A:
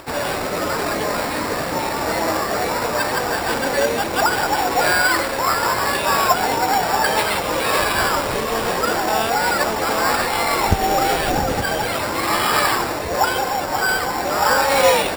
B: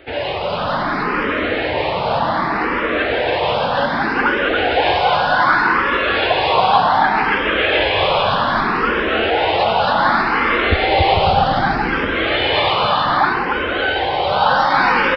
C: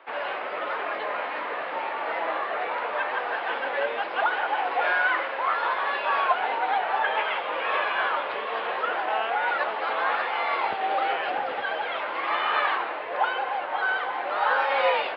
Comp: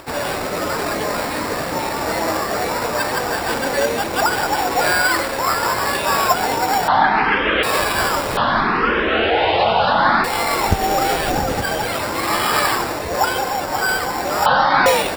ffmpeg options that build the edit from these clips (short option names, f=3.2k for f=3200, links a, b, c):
-filter_complex "[1:a]asplit=3[a][b][c];[0:a]asplit=4[d][e][f][g];[d]atrim=end=6.882[h];[a]atrim=start=6.878:end=7.632[i];[e]atrim=start=7.628:end=8.372[j];[b]atrim=start=8.368:end=10.242[k];[f]atrim=start=10.238:end=14.462[l];[c]atrim=start=14.458:end=14.862[m];[g]atrim=start=14.858[n];[h][i]acrossfade=d=0.004:c1=hsin:c2=hsin[o];[o][j]acrossfade=d=0.004:c1=hsin:c2=hsin[p];[p][k]acrossfade=d=0.004:c1=hsin:c2=hsin[q];[q][l]acrossfade=d=0.004:c1=hsin:c2=hsin[r];[r][m]acrossfade=d=0.004:c1=hsin:c2=hsin[s];[s][n]acrossfade=d=0.004:c1=hsin:c2=hsin"